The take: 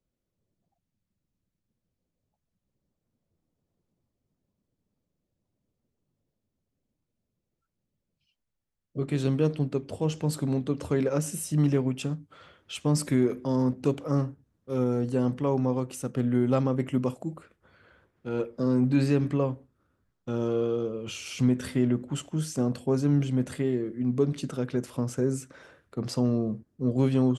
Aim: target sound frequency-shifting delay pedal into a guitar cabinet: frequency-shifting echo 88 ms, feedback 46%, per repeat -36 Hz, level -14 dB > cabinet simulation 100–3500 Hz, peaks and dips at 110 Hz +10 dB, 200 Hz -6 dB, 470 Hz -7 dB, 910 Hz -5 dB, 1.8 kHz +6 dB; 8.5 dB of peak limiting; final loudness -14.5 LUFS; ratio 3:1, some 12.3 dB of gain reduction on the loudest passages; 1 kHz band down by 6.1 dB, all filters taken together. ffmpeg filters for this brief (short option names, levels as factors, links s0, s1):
-filter_complex "[0:a]equalizer=f=1000:t=o:g=-5.5,acompressor=threshold=0.0158:ratio=3,alimiter=level_in=2.37:limit=0.0631:level=0:latency=1,volume=0.422,asplit=5[s0][s1][s2][s3][s4];[s1]adelay=88,afreqshift=-36,volume=0.2[s5];[s2]adelay=176,afreqshift=-72,volume=0.0923[s6];[s3]adelay=264,afreqshift=-108,volume=0.0422[s7];[s4]adelay=352,afreqshift=-144,volume=0.0195[s8];[s0][s5][s6][s7][s8]amix=inputs=5:normalize=0,highpass=100,equalizer=f=110:t=q:w=4:g=10,equalizer=f=200:t=q:w=4:g=-6,equalizer=f=470:t=q:w=4:g=-7,equalizer=f=910:t=q:w=4:g=-5,equalizer=f=1800:t=q:w=4:g=6,lowpass=f=3500:w=0.5412,lowpass=f=3500:w=1.3066,volume=23.7"